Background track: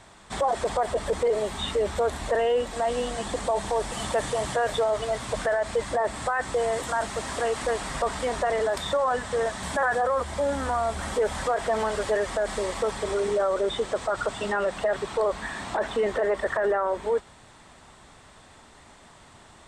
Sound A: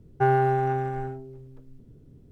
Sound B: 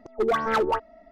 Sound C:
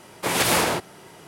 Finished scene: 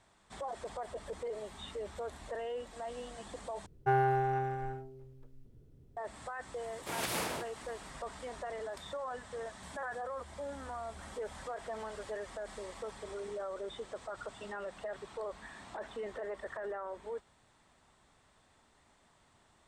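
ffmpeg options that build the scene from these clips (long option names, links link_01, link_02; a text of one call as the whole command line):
ffmpeg -i bed.wav -i cue0.wav -i cue1.wav -i cue2.wav -filter_complex "[0:a]volume=-16dB[link_01];[1:a]equalizer=frequency=220:width_type=o:width=1.6:gain=-7.5[link_02];[link_01]asplit=2[link_03][link_04];[link_03]atrim=end=3.664[link_05];[link_02]atrim=end=2.31,asetpts=PTS-STARTPTS,volume=-5dB[link_06];[link_04]atrim=start=5.966[link_07];[3:a]atrim=end=1.27,asetpts=PTS-STARTPTS,volume=-15.5dB,afade=type=in:duration=0.004:curve=hsin,afade=type=out:start_time=1.266:duration=0.004:curve=hsin,adelay=6630[link_08];[link_05][link_06]acrossfade=duration=0.004:curve1=hsin:curve2=hsin[link_09];[link_09][link_07]acrossfade=duration=0.004:curve1=hsin:curve2=hsin[link_10];[link_10][link_08]amix=inputs=2:normalize=0" out.wav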